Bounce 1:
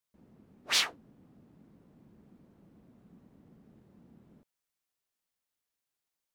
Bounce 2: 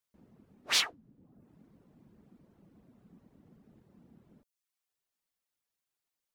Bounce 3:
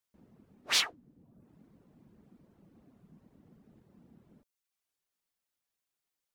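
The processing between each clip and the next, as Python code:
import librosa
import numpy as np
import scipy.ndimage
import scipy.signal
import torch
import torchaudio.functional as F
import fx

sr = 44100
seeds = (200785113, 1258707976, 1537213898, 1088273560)

y1 = fx.dereverb_blind(x, sr, rt60_s=0.61)
y2 = fx.record_warp(y1, sr, rpm=33.33, depth_cents=160.0)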